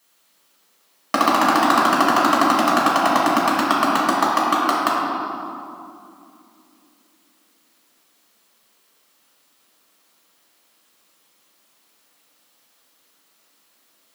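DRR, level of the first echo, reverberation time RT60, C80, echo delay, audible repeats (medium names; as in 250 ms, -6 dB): -7.0 dB, no echo, 2.5 s, 0.0 dB, no echo, no echo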